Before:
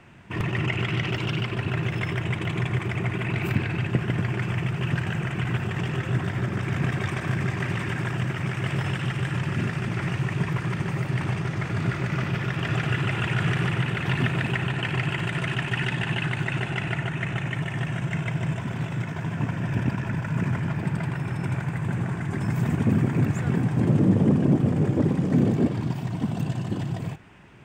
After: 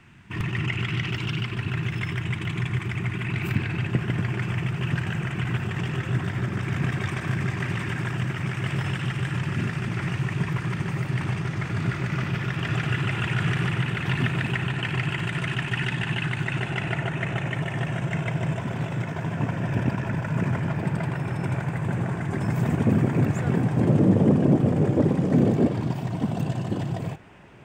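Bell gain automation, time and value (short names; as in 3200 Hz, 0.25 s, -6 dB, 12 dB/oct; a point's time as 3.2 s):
bell 570 Hz 1.2 oct
3.21 s -11 dB
3.86 s -3.5 dB
16.35 s -3.5 dB
17.09 s +5.5 dB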